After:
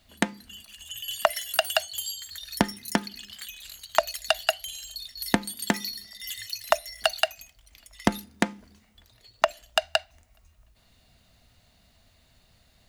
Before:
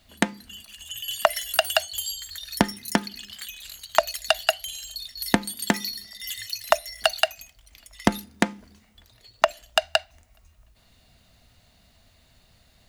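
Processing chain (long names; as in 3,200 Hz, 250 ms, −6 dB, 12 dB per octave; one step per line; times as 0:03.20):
0:01.30–0:02.32: high-pass filter 83 Hz
level −2.5 dB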